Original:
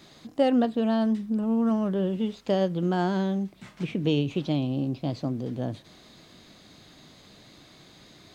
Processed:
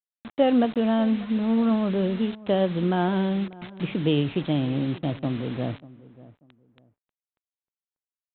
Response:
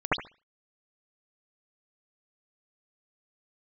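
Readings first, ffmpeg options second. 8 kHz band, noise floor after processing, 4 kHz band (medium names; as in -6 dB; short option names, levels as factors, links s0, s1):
no reading, under -85 dBFS, +2.5 dB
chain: -filter_complex "[0:a]aresample=8000,acrusher=bits=6:mix=0:aa=0.000001,aresample=44100,asplit=2[s0][s1];[s1]adelay=590,lowpass=f=1100:p=1,volume=0.112,asplit=2[s2][s3];[s3]adelay=590,lowpass=f=1100:p=1,volume=0.26[s4];[s0][s2][s4]amix=inputs=3:normalize=0,volume=1.26"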